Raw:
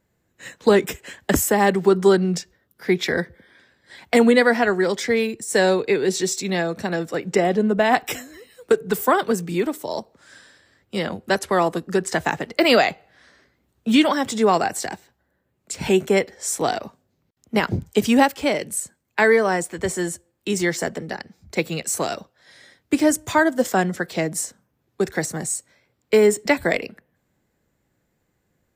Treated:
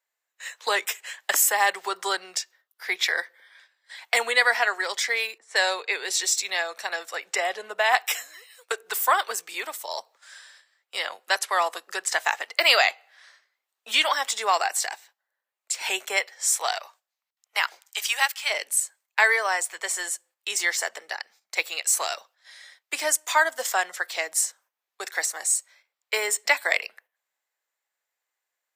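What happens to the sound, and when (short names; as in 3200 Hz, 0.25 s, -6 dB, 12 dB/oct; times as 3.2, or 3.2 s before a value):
5.38–6.03 low-pass opened by the level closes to 1000 Hz, open at -15 dBFS
16.16–18.49 HPF 380 Hz -> 1400 Hz
whole clip: Bessel high-pass 1100 Hz, order 4; gate -56 dBFS, range -9 dB; bell 1500 Hz -2.5 dB 0.3 oct; gain +3 dB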